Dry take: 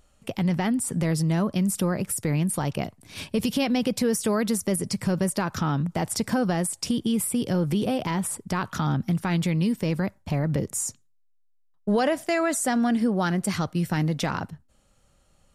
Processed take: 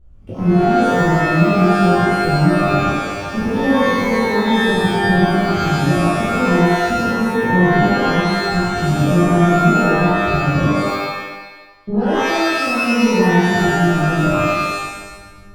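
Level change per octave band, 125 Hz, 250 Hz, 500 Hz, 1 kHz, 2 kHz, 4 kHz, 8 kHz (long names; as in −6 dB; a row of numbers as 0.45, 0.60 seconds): +9.0, +9.0, +11.5, +15.0, +15.5, +9.5, −3.5 decibels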